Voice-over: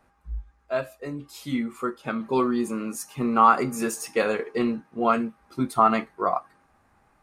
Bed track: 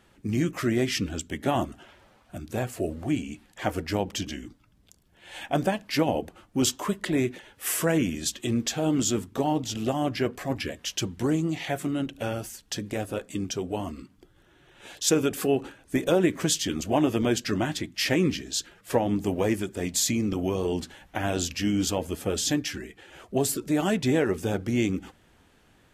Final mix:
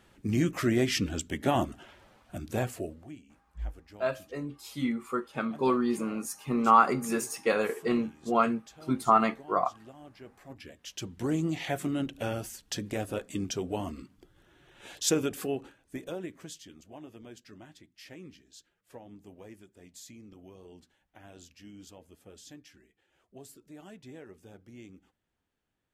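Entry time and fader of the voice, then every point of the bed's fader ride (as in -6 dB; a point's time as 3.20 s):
3.30 s, -3.0 dB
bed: 2.68 s -1 dB
3.23 s -23.5 dB
10.18 s -23.5 dB
11.43 s -2.5 dB
15.00 s -2.5 dB
16.85 s -24 dB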